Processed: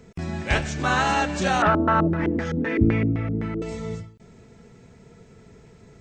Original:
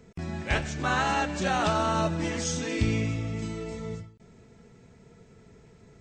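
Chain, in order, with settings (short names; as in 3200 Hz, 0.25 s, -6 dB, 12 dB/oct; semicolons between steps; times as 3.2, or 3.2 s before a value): 1.62–3.62 LFO low-pass square 3.9 Hz 340–1700 Hz; gain +4.5 dB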